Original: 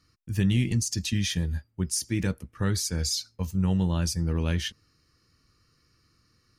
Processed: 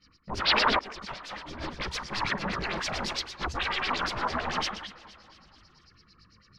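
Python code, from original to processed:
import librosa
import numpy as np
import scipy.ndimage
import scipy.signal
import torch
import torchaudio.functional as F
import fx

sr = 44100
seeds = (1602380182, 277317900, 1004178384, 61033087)

y = fx.peak_eq(x, sr, hz=190.0, db=10.5, octaves=0.52)
y = 10.0 ** (-32.5 / 20.0) * (np.abs((y / 10.0 ** (-32.5 / 20.0) + 3.0) % 4.0 - 2.0) - 1.0)
y = fx.spec_box(y, sr, start_s=0.46, length_s=0.37, low_hz=210.0, high_hz=5700.0, gain_db=7)
y = y + 10.0 ** (-8.0 / 20.0) * np.pad(y, (int(153 * sr / 1000.0), 0))[:len(y)]
y = fx.filter_lfo_lowpass(y, sr, shape='sine', hz=8.9, low_hz=950.0, high_hz=5300.0, q=4.7)
y = fx.echo_feedback(y, sr, ms=235, feedback_pct=56, wet_db=-17.5)
y = fx.over_compress(y, sr, threshold_db=-43.0, ratio=-1.0, at=(0.77, 1.68))
y = fx.chorus_voices(y, sr, voices=4, hz=1.5, base_ms=17, depth_ms=3.0, mix_pct=70)
y = fx.sustainer(y, sr, db_per_s=22.0, at=(2.38, 3.13))
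y = y * 10.0 ** (4.5 / 20.0)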